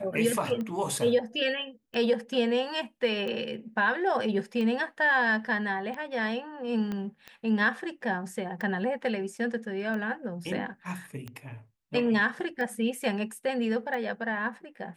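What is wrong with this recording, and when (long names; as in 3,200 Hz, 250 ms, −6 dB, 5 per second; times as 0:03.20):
scratch tick 45 rpm −24 dBFS
0:06.92: click −22 dBFS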